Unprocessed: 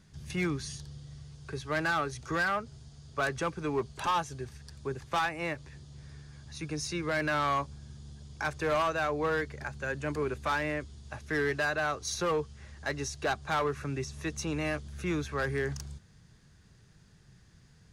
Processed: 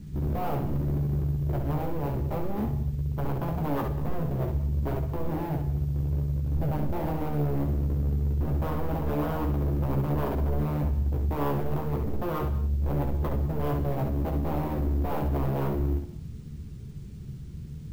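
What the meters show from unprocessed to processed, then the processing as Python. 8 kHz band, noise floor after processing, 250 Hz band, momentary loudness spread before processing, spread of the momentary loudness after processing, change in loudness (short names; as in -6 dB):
under -15 dB, -40 dBFS, +7.0 dB, 18 LU, 4 LU, +3.5 dB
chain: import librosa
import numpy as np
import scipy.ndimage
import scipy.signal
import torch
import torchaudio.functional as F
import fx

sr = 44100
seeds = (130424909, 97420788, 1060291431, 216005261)

p1 = fx.tracing_dist(x, sr, depth_ms=0.2)
p2 = scipy.signal.sosfilt(scipy.signal.butter(6, 520.0, 'lowpass', fs=sr, output='sos'), p1)
p3 = p2 + 0.58 * np.pad(p2, (int(0.9 * sr / 1000.0), 0))[:len(p2)]
p4 = fx.over_compress(p3, sr, threshold_db=-40.0, ratio=-1.0)
p5 = p3 + F.gain(torch.from_numpy(p4), 2.5).numpy()
p6 = fx.quant_dither(p5, sr, seeds[0], bits=12, dither='triangular')
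p7 = 10.0 ** (-30.0 / 20.0) * (np.abs((p6 / 10.0 ** (-30.0 / 20.0) + 3.0) % 4.0 - 2.0) - 1.0)
p8 = p7 + fx.room_early_taps(p7, sr, ms=(14, 68), db=(-4.5, -5.0), dry=0)
p9 = fx.rev_gated(p8, sr, seeds[1], gate_ms=240, shape='flat', drr_db=11.0)
p10 = np.repeat(p9[::3], 3)[:len(p9)]
y = F.gain(torch.from_numpy(p10), 4.0).numpy()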